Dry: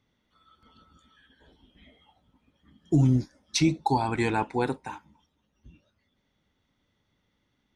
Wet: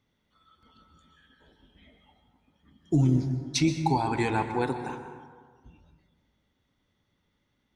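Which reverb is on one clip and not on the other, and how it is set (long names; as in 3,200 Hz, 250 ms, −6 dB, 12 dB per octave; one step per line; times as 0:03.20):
dense smooth reverb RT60 1.6 s, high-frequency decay 0.4×, pre-delay 110 ms, DRR 7.5 dB
level −1.5 dB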